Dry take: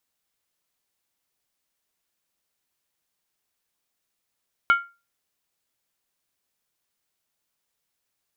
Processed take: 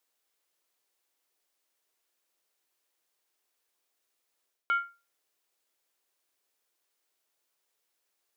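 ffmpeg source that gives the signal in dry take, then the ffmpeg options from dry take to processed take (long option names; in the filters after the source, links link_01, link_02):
-f lavfi -i "aevalsrc='0.282*pow(10,-3*t/0.29)*sin(2*PI*1390*t)+0.1*pow(10,-3*t/0.23)*sin(2*PI*2215.7*t)+0.0355*pow(10,-3*t/0.198)*sin(2*PI*2969*t)+0.0126*pow(10,-3*t/0.191)*sin(2*PI*3191.4*t)+0.00447*pow(10,-3*t/0.178)*sin(2*PI*3687.7*t)':duration=0.63:sample_rate=44100"
-af "lowshelf=frequency=260:width_type=q:width=1.5:gain=-10,bandreject=frequency=50:width_type=h:width=6,bandreject=frequency=100:width_type=h:width=6,areverse,acompressor=threshold=-27dB:ratio=6,areverse"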